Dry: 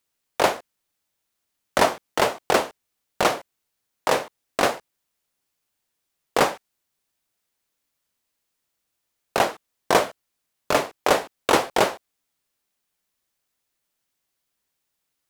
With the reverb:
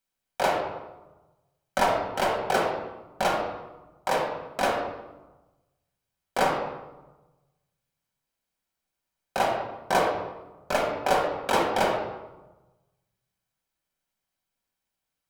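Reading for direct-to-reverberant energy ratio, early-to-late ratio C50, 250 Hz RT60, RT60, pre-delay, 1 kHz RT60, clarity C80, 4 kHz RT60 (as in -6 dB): -1.5 dB, 2.5 dB, 1.3 s, 1.1 s, 5 ms, 1.1 s, 5.0 dB, 0.70 s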